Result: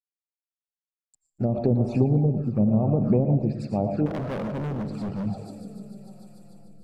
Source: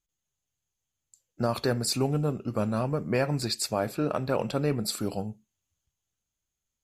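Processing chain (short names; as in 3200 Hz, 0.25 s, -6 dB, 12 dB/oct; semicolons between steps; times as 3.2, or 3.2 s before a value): backlash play -49 dBFS; multi-head echo 0.148 s, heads first and second, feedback 73%, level -19 dB; on a send at -7.5 dB: reverb RT60 0.40 s, pre-delay 65 ms; on the sum: envelope flanger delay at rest 6.9 ms, full sweep at -23.5 dBFS; treble ducked by the level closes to 400 Hz, closed at -21.5 dBFS; thirty-one-band EQ 100 Hz +5 dB, 200 Hz +8 dB, 800 Hz +9 dB, 2500 Hz +8 dB; rotary speaker horn 0.9 Hz; bell 2500 Hz -11.5 dB 2.6 oct; 4.06–5.26 hard clip -34 dBFS, distortion -10 dB; warbling echo 0.118 s, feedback 44%, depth 125 cents, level -17 dB; gain +6.5 dB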